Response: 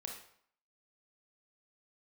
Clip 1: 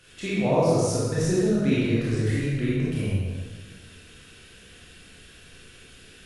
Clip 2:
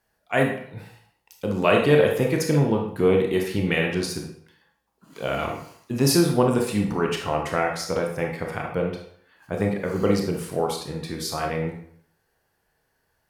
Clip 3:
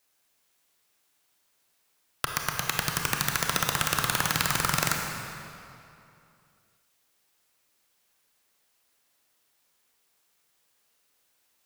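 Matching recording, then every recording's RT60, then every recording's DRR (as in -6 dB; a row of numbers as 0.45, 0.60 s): 2; 1.4, 0.65, 2.7 s; -8.5, 1.0, 1.5 dB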